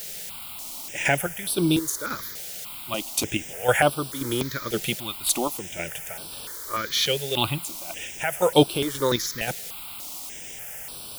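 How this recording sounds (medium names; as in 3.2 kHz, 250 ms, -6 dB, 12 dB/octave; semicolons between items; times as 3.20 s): chopped level 1.9 Hz, depth 60%, duty 40%; a quantiser's noise floor 8-bit, dither triangular; notches that jump at a steady rate 3.4 Hz 290–6700 Hz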